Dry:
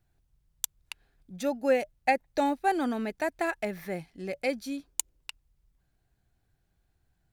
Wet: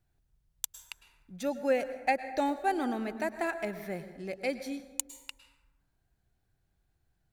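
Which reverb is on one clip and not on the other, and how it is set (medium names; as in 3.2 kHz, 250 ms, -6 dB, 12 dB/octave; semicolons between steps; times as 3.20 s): plate-style reverb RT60 1.2 s, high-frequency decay 0.45×, pre-delay 95 ms, DRR 11 dB; trim -3 dB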